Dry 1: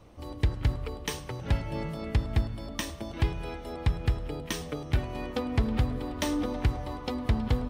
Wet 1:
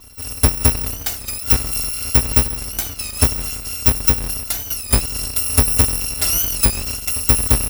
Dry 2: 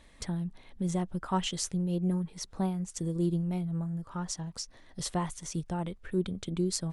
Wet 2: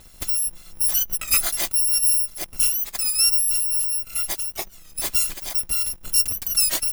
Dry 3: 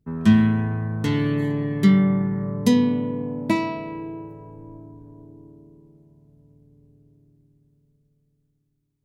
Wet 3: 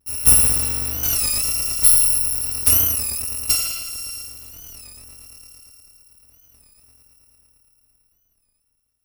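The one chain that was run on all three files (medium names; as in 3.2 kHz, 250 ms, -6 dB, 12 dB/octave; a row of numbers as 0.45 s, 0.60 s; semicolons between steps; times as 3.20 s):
bit-reversed sample order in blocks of 256 samples; warped record 33 1/3 rpm, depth 160 cents; peak normalisation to -3 dBFS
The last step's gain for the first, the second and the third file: +11.0 dB, +10.0 dB, +2.0 dB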